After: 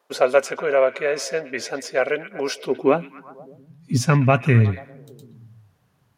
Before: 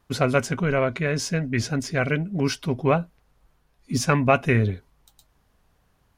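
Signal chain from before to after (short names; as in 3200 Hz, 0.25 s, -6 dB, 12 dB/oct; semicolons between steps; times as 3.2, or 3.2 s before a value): delay with a stepping band-pass 0.121 s, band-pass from 2700 Hz, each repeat -0.7 oct, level -12 dB; high-pass sweep 510 Hz -> 120 Hz, 2.48–3.71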